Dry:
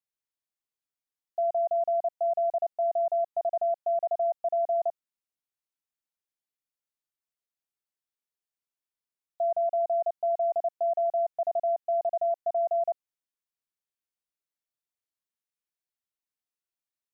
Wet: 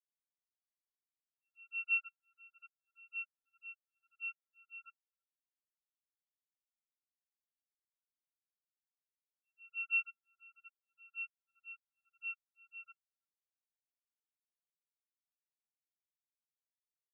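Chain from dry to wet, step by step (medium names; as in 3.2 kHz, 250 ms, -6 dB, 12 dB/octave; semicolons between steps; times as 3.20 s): comb filter that takes the minimum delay 0.32 ms; distance through air 210 m; band-stop 730 Hz, Q 12; comb 4.8 ms, depth 47%; reverb removal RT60 0.6 s; spectral gate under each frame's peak -15 dB weak; in parallel at -1 dB: peak limiter -44 dBFS, peak gain reduction 10 dB; on the sum: slow attack 509 ms; tilt EQ +5 dB/octave; on a send: filtered feedback delay 332 ms, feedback 74%, low-pass 860 Hz, level -6 dB; on the sum: spectral contrast expander 4:1; trim +5.5 dB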